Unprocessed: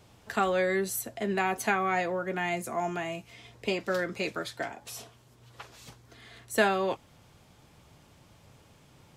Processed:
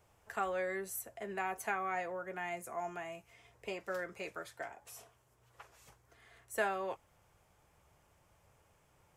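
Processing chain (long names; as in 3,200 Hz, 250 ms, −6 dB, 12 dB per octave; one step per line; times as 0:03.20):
octave-band graphic EQ 125/250/4,000 Hz −6/−11/−11 dB
level −7 dB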